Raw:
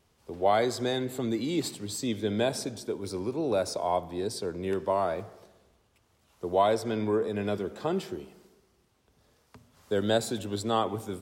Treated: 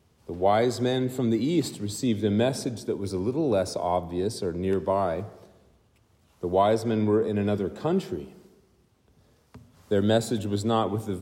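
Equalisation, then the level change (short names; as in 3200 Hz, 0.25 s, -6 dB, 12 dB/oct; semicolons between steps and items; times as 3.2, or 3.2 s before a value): HPF 61 Hz; low shelf 350 Hz +9 dB; 0.0 dB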